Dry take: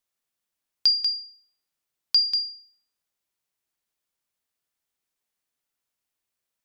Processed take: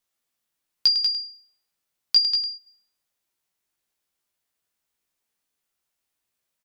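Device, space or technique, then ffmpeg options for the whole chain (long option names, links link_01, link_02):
slapback doubling: -filter_complex "[0:a]asplit=3[link_01][link_02][link_03];[link_01]afade=type=out:start_time=2.15:duration=0.02[link_04];[link_02]lowpass=frequency=6900:width=0.5412,lowpass=frequency=6900:width=1.3066,afade=type=in:start_time=2.15:duration=0.02,afade=type=out:start_time=2.55:duration=0.02[link_05];[link_03]afade=type=in:start_time=2.55:duration=0.02[link_06];[link_04][link_05][link_06]amix=inputs=3:normalize=0,asplit=3[link_07][link_08][link_09];[link_08]adelay=17,volume=-3.5dB[link_10];[link_09]adelay=103,volume=-10dB[link_11];[link_07][link_10][link_11]amix=inputs=3:normalize=0,volume=1.5dB"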